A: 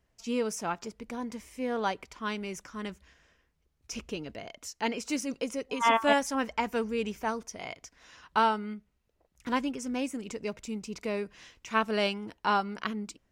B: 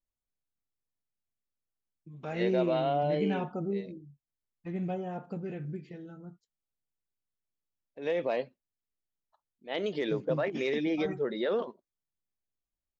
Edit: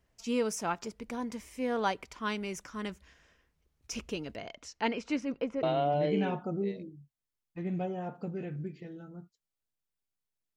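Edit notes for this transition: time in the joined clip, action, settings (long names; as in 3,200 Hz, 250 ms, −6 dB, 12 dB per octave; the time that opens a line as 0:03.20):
A
0:04.36–0:05.63: low-pass filter 7,000 Hz → 1,600 Hz
0:05.63: continue with B from 0:02.72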